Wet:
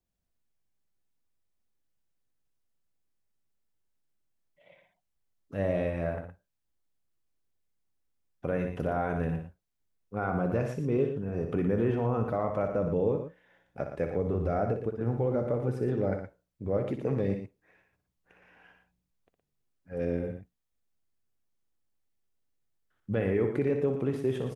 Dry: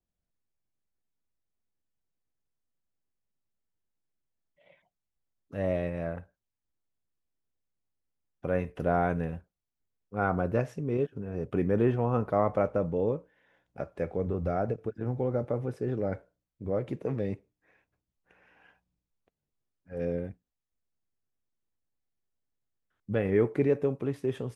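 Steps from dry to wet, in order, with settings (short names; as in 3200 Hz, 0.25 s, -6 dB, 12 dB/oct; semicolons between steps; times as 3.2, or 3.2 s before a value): limiter -20 dBFS, peak gain reduction 7.5 dB; on a send: loudspeakers at several distances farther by 21 m -8 dB, 40 m -9 dB; on the sum: gain +1.5 dB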